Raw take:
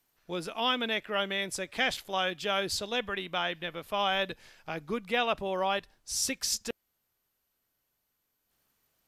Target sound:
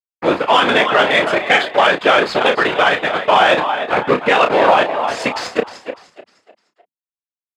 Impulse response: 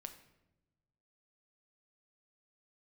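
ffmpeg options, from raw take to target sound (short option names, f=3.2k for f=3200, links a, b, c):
-filter_complex "[0:a]acrusher=bits=5:mix=0:aa=0.000001,highshelf=f=4.4k:g=-6,bandreject=f=5.7k:w=5.3,asplit=5[a][b][c][d][e];[b]adelay=364,afreqshift=49,volume=-11dB[f];[c]adelay=728,afreqshift=98,volume=-19.6dB[g];[d]adelay=1092,afreqshift=147,volume=-28.3dB[h];[e]adelay=1456,afreqshift=196,volume=-36.9dB[i];[a][f][g][h][i]amix=inputs=5:normalize=0,atempo=1.2,afftfilt=real='hypot(re,im)*cos(2*PI*random(0))':imag='hypot(re,im)*sin(2*PI*random(1))':win_size=512:overlap=0.75,adynamicsmooth=sensitivity=2:basefreq=1.9k,highpass=f=690:p=1,asplit=2[j][k];[k]adelay=32,volume=-8.5dB[l];[j][l]amix=inputs=2:normalize=0,alimiter=level_in=31.5dB:limit=-1dB:release=50:level=0:latency=1,volume=-1dB"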